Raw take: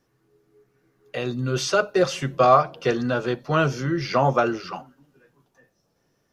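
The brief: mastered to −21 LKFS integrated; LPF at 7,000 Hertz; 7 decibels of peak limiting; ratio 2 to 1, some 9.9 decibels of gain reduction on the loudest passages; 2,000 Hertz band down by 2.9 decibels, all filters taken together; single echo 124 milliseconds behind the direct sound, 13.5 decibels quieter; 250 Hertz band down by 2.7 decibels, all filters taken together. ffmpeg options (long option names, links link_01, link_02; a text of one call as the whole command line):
ffmpeg -i in.wav -af "lowpass=7000,equalizer=frequency=250:width_type=o:gain=-4,equalizer=frequency=2000:width_type=o:gain=-4.5,acompressor=threshold=-30dB:ratio=2,alimiter=limit=-22.5dB:level=0:latency=1,aecho=1:1:124:0.211,volume=12dB" out.wav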